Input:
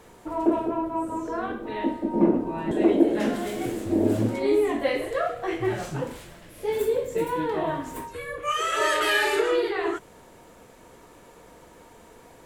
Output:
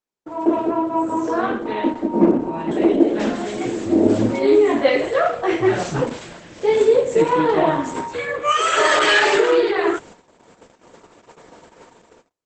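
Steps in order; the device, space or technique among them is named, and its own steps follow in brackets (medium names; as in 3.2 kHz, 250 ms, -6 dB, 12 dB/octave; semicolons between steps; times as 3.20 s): video call (high-pass 140 Hz 12 dB/octave; level rider gain up to 12 dB; gate -37 dBFS, range -42 dB; trim -1 dB; Opus 12 kbps 48 kHz)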